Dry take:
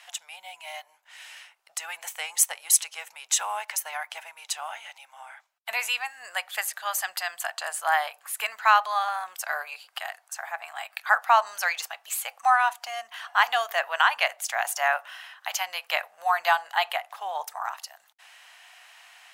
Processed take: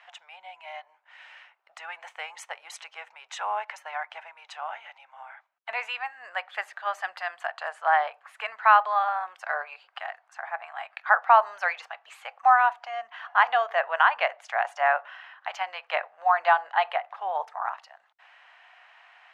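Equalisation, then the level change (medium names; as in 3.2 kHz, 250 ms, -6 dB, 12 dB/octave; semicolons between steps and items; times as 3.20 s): high-pass 330 Hz 6 dB/octave; low-pass 1.9 kHz 12 dB/octave; dynamic bell 430 Hz, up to +6 dB, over -41 dBFS, Q 1.1; +1.5 dB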